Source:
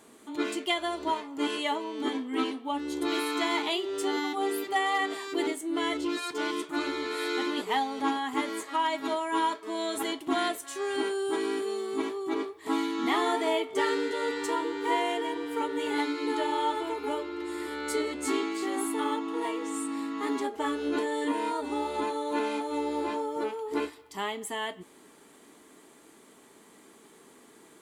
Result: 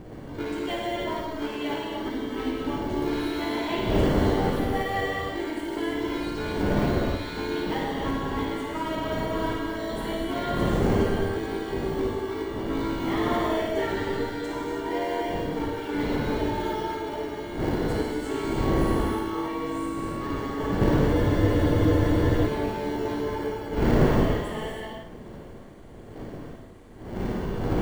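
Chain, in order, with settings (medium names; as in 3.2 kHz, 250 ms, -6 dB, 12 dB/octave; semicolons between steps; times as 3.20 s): wind noise 430 Hz -32 dBFS; flutter echo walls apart 9.4 m, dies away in 0.5 s; in parallel at -4 dB: sample-and-hold 35×; on the sum: peaking EQ 10 kHz -9.5 dB 1.9 oct; gated-style reverb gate 350 ms flat, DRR -3.5 dB; spectral freeze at 21.15 s, 1.31 s; trim -7 dB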